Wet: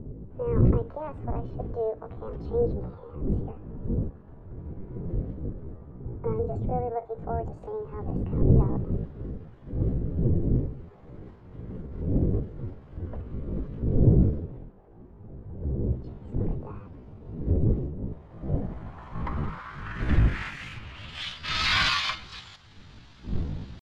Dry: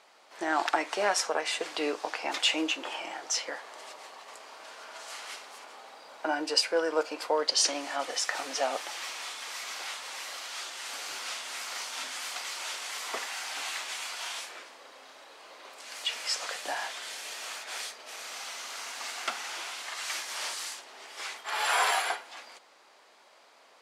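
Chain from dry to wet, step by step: wind noise 86 Hz -29 dBFS; pitch shift +7 st; low-pass sweep 450 Hz -> 4100 Hz, 18.07–21.55

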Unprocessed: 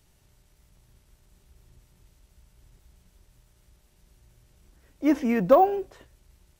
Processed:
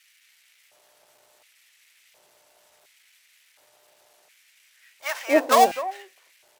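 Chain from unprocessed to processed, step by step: switching dead time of 0.1 ms; three bands offset in time highs, mids, lows 0.26/0.32 s, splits 190/1000 Hz; LFO high-pass square 0.7 Hz 650–2100 Hz; gain +8.5 dB

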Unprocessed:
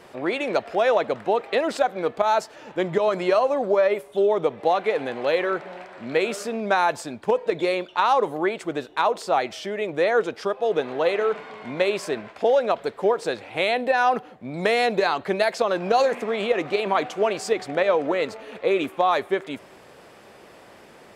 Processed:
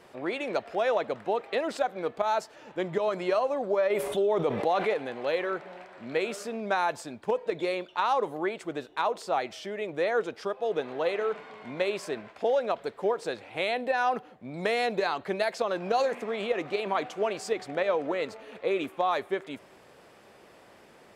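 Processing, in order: 3.9–4.94 fast leveller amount 70%; gain -6.5 dB

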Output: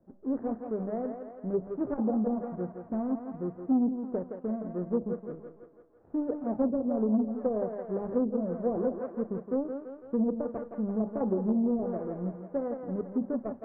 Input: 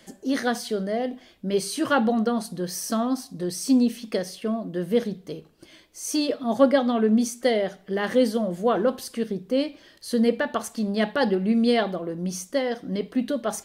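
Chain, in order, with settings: median filter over 41 samples; in parallel at -4 dB: backlash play -30 dBFS; on the sum: LPF 1200 Hz 24 dB/oct; on a send: thinning echo 0.167 s, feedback 63%, high-pass 320 Hz, level -6 dB; on the sum: treble ducked by the level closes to 400 Hz, closed at -13 dBFS; core saturation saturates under 260 Hz; gain -8.5 dB

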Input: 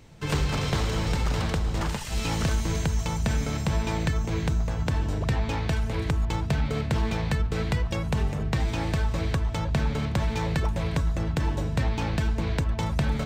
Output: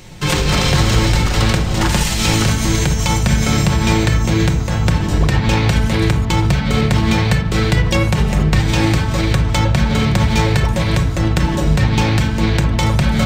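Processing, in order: in parallel at +2 dB: negative-ratio compressor -28 dBFS; on the sum: high shelf 2100 Hz +8 dB; reverb RT60 0.75 s, pre-delay 5 ms, DRR 2 dB; gain +2 dB

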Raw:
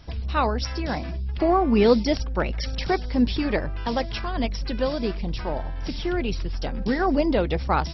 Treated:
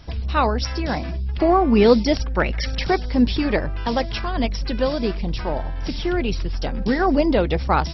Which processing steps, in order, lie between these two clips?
2.2–2.83 bell 1900 Hz +6 dB 0.77 oct; gain +3.5 dB

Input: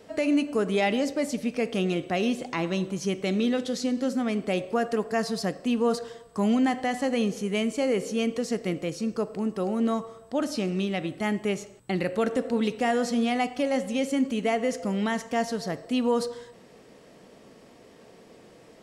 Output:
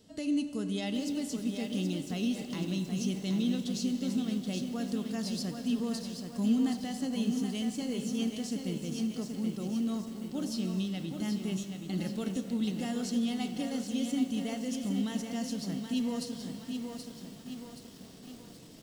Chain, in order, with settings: band shelf 940 Hz -13 dB 2.9 oct; notch 2400 Hz, Q 10; reverse; upward compressor, threshold -39 dBFS; reverse; resonator 150 Hz, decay 0.72 s, harmonics all, mix 50%; speakerphone echo 90 ms, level -21 dB; reverb RT60 3.3 s, pre-delay 0.14 s, DRR 11.5 dB; lo-fi delay 0.776 s, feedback 55%, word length 9-bit, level -6 dB; gain +1.5 dB

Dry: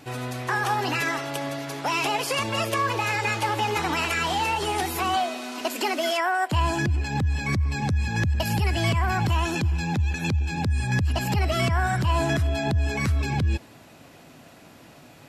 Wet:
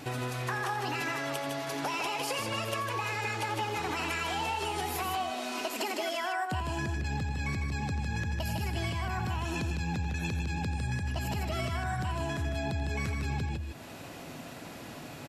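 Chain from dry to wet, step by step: compressor, threshold -36 dBFS, peak gain reduction 16.5 dB; loudspeakers at several distances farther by 30 m -12 dB, 53 m -5 dB; gain +3.5 dB

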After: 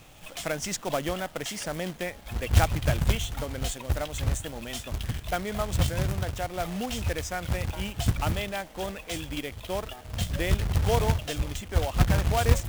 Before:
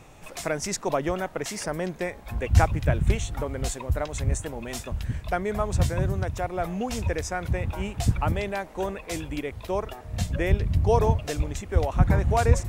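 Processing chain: thirty-one-band EQ 400 Hz -6 dB, 1000 Hz -4 dB, 3150 Hz +11 dB; companded quantiser 4-bit; gain -2.5 dB

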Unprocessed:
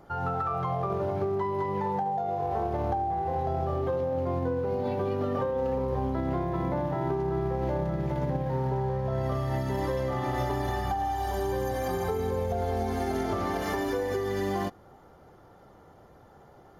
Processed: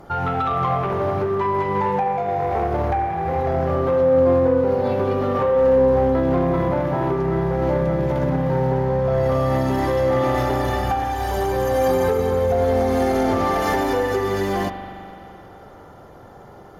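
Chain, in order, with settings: in parallel at -6 dB: sine folder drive 8 dB, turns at -15.5 dBFS; on the sum: spring tank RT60 2.9 s, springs 42 ms, chirp 75 ms, DRR 4.5 dB

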